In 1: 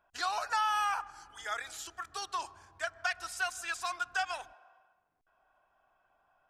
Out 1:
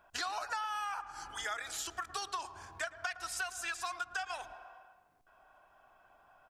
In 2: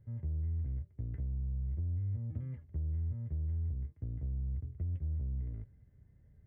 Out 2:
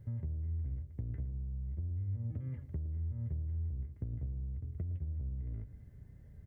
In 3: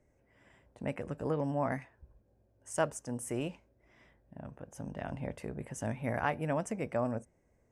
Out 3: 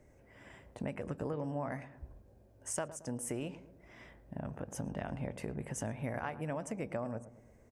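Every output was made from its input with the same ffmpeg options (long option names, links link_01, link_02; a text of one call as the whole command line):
ffmpeg -i in.wav -filter_complex "[0:a]acompressor=threshold=-44dB:ratio=6,asplit=2[link_01][link_02];[link_02]adelay=112,lowpass=frequency=1000:poles=1,volume=-13dB,asplit=2[link_03][link_04];[link_04]adelay=112,lowpass=frequency=1000:poles=1,volume=0.52,asplit=2[link_05][link_06];[link_06]adelay=112,lowpass=frequency=1000:poles=1,volume=0.52,asplit=2[link_07][link_08];[link_08]adelay=112,lowpass=frequency=1000:poles=1,volume=0.52,asplit=2[link_09][link_10];[link_10]adelay=112,lowpass=frequency=1000:poles=1,volume=0.52[link_11];[link_03][link_05][link_07][link_09][link_11]amix=inputs=5:normalize=0[link_12];[link_01][link_12]amix=inputs=2:normalize=0,volume=8dB" out.wav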